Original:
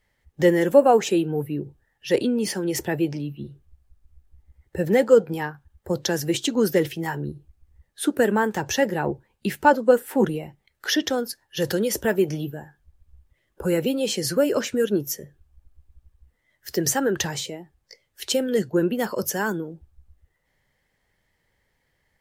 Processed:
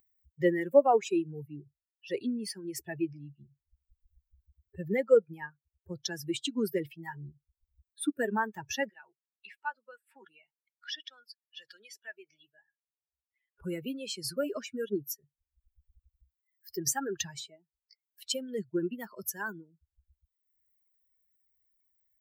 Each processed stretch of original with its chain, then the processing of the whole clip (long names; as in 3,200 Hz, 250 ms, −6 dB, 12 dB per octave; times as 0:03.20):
0:08.89–0:13.62: resonant band-pass 2,700 Hz, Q 0.6 + downward compressor 1.5 to 1, threshold −31 dBFS
whole clip: spectral dynamics exaggerated over time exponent 2; high-pass filter 200 Hz 6 dB per octave; upward compression, threshold −46 dBFS; level −4 dB